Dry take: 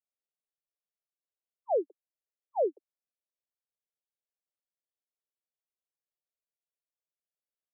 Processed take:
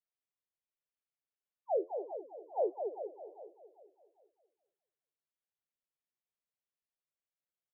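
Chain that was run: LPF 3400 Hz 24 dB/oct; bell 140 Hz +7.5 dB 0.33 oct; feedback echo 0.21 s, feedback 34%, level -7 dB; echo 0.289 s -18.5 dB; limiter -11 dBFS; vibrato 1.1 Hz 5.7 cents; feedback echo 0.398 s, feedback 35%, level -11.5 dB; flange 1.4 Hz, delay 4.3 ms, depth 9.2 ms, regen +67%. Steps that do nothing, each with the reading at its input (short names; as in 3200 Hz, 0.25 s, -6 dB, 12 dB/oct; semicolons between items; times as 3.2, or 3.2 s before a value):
LPF 3400 Hz: input band ends at 960 Hz; bell 140 Hz: input band starts at 290 Hz; limiter -11 dBFS: input peak -20.5 dBFS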